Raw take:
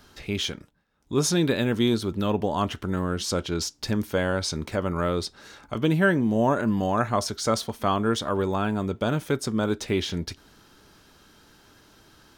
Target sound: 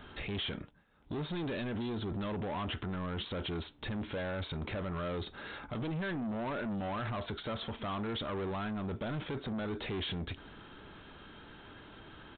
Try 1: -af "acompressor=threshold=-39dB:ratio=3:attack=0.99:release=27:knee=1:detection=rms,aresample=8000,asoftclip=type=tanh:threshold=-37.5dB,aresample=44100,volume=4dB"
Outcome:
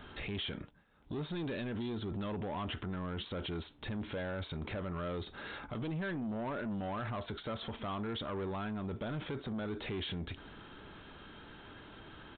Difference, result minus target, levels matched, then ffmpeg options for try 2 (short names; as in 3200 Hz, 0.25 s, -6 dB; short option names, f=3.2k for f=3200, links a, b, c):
compressor: peak gain reduction +4.5 dB
-af "acompressor=threshold=-32.5dB:ratio=3:attack=0.99:release=27:knee=1:detection=rms,aresample=8000,asoftclip=type=tanh:threshold=-37.5dB,aresample=44100,volume=4dB"